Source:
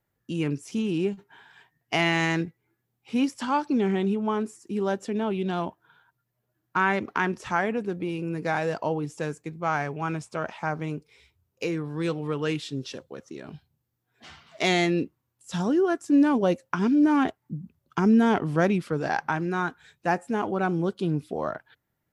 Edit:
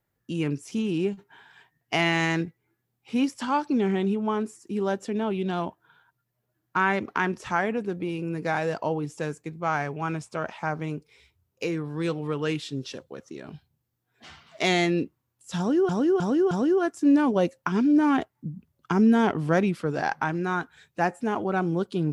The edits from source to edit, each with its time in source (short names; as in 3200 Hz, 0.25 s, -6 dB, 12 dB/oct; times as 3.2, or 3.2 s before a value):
15.58–15.89 loop, 4 plays